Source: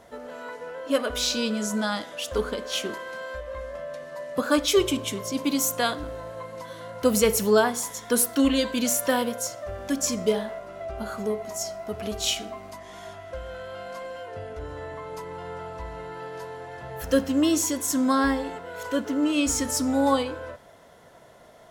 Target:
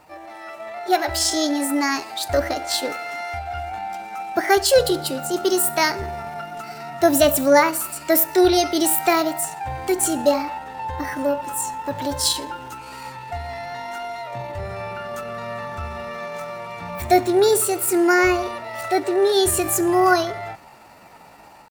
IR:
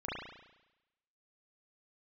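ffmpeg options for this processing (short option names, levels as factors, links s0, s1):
-af "dynaudnorm=f=450:g=3:m=2,asetrate=58866,aresample=44100,atempo=0.749154"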